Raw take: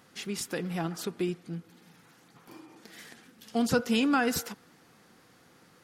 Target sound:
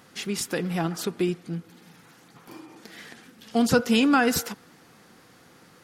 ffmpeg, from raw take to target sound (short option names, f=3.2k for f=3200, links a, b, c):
-filter_complex "[0:a]asettb=1/sr,asplit=3[a][b][c];[a]atrim=end=2.874[d];[b]atrim=start=2.87:end=3.51,asetpts=PTS-STARTPTS,afade=t=in:d=0.004:c=qsin,afade=t=out:st=0.636:d=0.004:c=qsin,acrossover=split=4800[e][f];[f]acompressor=threshold=-59dB:ratio=4:attack=1:release=60[g];[e][g]amix=inputs=2:normalize=0[h];[c]atrim=start=3.506[i];[d][h]acrossfade=d=0.004:c1=hsin:c2=qsin[j];[j][i]acrossfade=d=0.004:c1=qsin:c2=hsin,volume=5.5dB"